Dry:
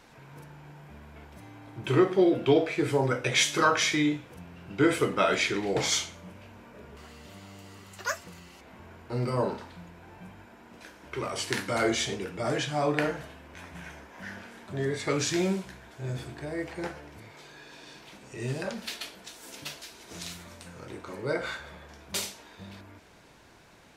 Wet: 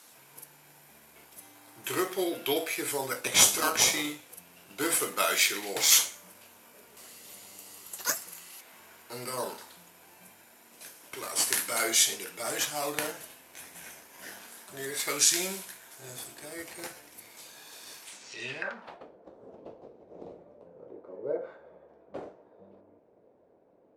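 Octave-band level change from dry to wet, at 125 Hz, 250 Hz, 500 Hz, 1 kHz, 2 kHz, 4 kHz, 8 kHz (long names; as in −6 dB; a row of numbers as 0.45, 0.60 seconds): −16.5, −10.0, −7.0, −4.0, −1.5, +3.0, +9.0 decibels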